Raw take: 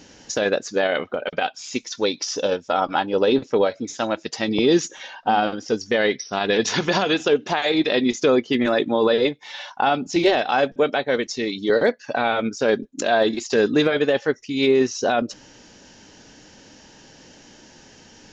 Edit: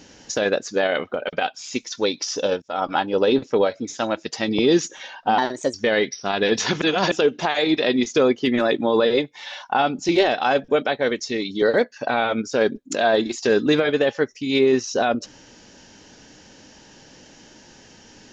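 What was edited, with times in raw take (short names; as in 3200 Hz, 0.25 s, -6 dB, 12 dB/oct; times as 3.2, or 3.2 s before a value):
2.62–2.88 fade in, from -23 dB
5.38–5.81 speed 121%
6.89–7.19 reverse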